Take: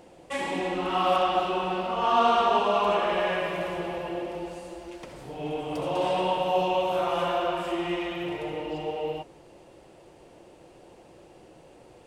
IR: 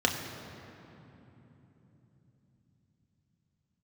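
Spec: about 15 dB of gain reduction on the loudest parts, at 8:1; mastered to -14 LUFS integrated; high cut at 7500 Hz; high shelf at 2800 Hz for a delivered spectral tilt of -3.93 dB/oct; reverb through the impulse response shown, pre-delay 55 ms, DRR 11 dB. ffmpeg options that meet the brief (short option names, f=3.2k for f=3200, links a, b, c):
-filter_complex "[0:a]lowpass=7.5k,highshelf=f=2.8k:g=-4.5,acompressor=threshold=-34dB:ratio=8,asplit=2[a][b];[1:a]atrim=start_sample=2205,adelay=55[c];[b][c]afir=irnorm=-1:irlink=0,volume=-22.5dB[d];[a][d]amix=inputs=2:normalize=0,volume=23.5dB"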